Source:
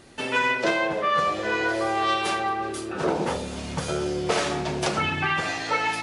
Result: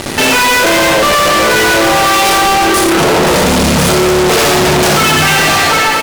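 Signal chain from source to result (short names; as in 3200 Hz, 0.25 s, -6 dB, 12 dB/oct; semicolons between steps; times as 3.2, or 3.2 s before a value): ending faded out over 0.86 s; reverse bouncing-ball echo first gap 60 ms, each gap 1.3×, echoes 5; fuzz box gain 45 dB, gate -50 dBFS; gain +4.5 dB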